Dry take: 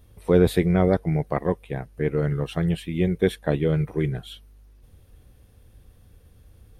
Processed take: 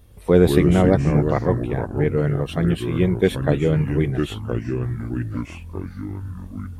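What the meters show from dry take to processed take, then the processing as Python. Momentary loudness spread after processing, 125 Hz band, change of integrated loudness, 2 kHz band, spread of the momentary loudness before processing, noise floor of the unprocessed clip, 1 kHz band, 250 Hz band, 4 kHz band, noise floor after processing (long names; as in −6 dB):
16 LU, +5.0 dB, +3.5 dB, +4.0 dB, 9 LU, −54 dBFS, +4.0 dB, +4.5 dB, +3.5 dB, −38 dBFS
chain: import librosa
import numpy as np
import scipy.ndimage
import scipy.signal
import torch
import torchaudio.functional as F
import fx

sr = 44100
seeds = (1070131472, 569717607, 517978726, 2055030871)

y = fx.echo_pitch(x, sr, ms=116, semitones=-4, count=3, db_per_echo=-6.0)
y = y * librosa.db_to_amplitude(3.0)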